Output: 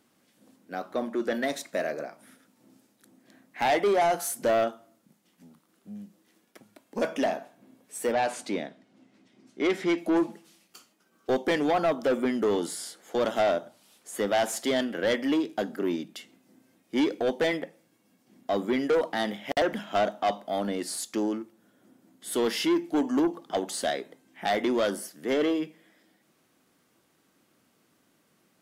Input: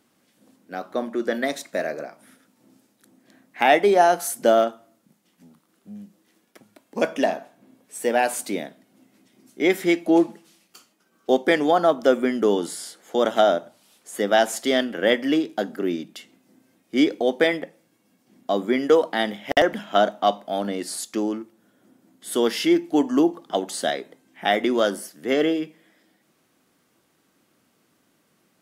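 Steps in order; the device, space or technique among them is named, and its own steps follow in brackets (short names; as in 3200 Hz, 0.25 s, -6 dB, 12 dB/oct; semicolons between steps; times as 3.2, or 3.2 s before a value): 8.12–9.98 LPF 5400 Hz 12 dB/oct; saturation between pre-emphasis and de-emphasis (high shelf 7800 Hz +8.5 dB; soft clip -17 dBFS, distortion -10 dB; high shelf 7800 Hz -8.5 dB); gain -2 dB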